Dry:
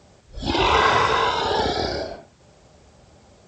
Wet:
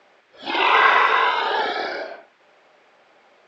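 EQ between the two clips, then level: Chebyshev band-pass 320–2200 Hz, order 2; tilt shelf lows -9 dB, about 690 Hz; 0.0 dB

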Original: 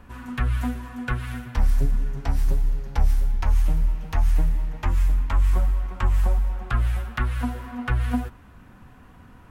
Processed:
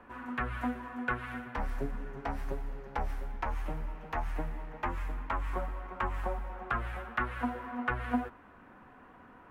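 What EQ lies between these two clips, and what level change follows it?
three-band isolator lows -17 dB, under 260 Hz, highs -17 dB, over 2400 Hz; 0.0 dB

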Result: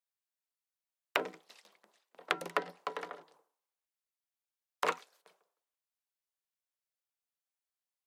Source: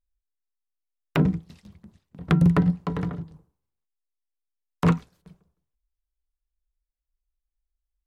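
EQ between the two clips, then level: HPF 510 Hz 24 dB/oct; dynamic EQ 1000 Hz, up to -4 dB, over -41 dBFS, Q 0.74; 0.0 dB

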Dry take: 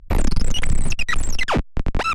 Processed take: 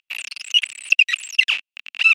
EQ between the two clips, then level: resonant high-pass 2700 Hz, resonance Q 9.5; -3.0 dB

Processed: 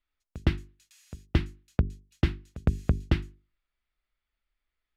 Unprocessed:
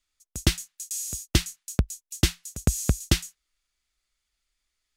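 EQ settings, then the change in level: notches 50/100/150/200/250/300/350/400 Hz; dynamic EQ 3700 Hz, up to -4 dB, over -40 dBFS, Q 1.1; air absorption 410 m; 0.0 dB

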